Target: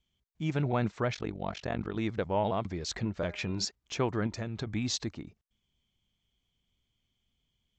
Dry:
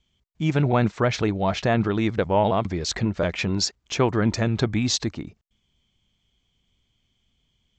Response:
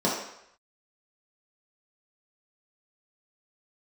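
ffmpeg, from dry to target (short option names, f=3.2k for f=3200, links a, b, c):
-filter_complex "[0:a]asettb=1/sr,asplit=3[a][b][c];[a]atrim=end=1.144[d];[b]atrim=start=1.14:end=1.96,asetpts=PTS-STARTPTS,afade=t=in:d=0.004:c=qsin,afade=t=out:st=0.816:d=0.004:c=qsin,tremolo=f=46:d=0.974[e];[c]atrim=start=1.956[f];[d][e]acrossfade=d=0.004:c1=hsin:c2=qsin[g];[g][f]acrossfade=d=0.004:c1=qsin:c2=hsin,asettb=1/sr,asplit=3[h][i][j];[h]atrim=end=3.184[k];[i]atrim=start=3.18:end=3.65,asetpts=PTS-STARTPTS,afade=t=in:d=0.004:c=qsin,afade=t=out:st=0.466:d=0.004:c=qsin,bandreject=f=202.8:t=h:w=4,bandreject=f=405.6:t=h:w=4,bandreject=f=608.4:t=h:w=4,bandreject=f=811.2:t=h:w=4,bandreject=f=1.014k:t=h:w=4,bandreject=f=1.2168k:t=h:w=4,bandreject=f=1.4196k:t=h:w=4,bandreject=f=1.6224k:t=h:w=4,bandreject=f=1.8252k:t=h:w=4,bandreject=f=2.028k:t=h:w=4,bandreject=f=2.2308k:t=h:w=4,bandreject=f=2.4336k:t=h:w=4[l];[j]atrim=start=3.646[m];[k][l]acrossfade=d=0.004:c1=hsin:c2=qsin[n];[n][m]acrossfade=d=0.004:c1=qsin:c2=hsin,asettb=1/sr,asplit=3[o][p][q];[o]atrim=end=4.264[r];[p]atrim=start=4.26:end=4.67,asetpts=PTS-STARTPTS,afade=t=in:d=0.004:c=qsin,afade=t=out:st=0.406:d=0.004:c=qsin,acompressor=threshold=-23dB:ratio=6[s];[q]atrim=start=4.666[t];[r][s]acrossfade=d=0.004:c1=hsin:c2=qsin[u];[u][t]acrossfade=d=0.004:c1=qsin:c2=hsin,volume=-9dB"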